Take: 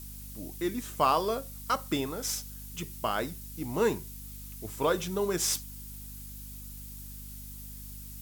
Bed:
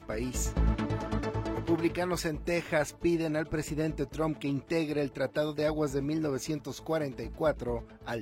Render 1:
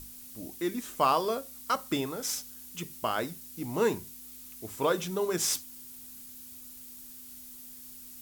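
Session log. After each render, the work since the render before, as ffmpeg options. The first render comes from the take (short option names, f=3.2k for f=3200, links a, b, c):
-af "bandreject=f=50:t=h:w=6,bandreject=f=100:t=h:w=6,bandreject=f=150:t=h:w=6,bandreject=f=200:t=h:w=6"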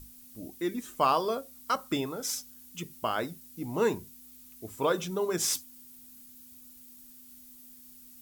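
-af "afftdn=nr=7:nf=-47"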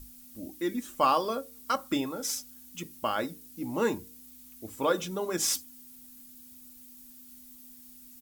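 -af "aecho=1:1:3.6:0.41,bandreject=f=152.3:t=h:w=4,bandreject=f=304.6:t=h:w=4,bandreject=f=456.9:t=h:w=4"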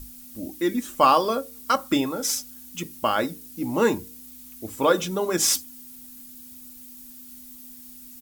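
-af "volume=7dB"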